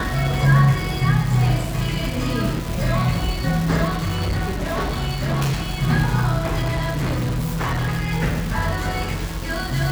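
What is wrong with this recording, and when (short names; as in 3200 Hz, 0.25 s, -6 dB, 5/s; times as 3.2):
crackle 600/s -25 dBFS
3.89–5.72 clipped -18 dBFS
6.62–8.13 clipped -18.5 dBFS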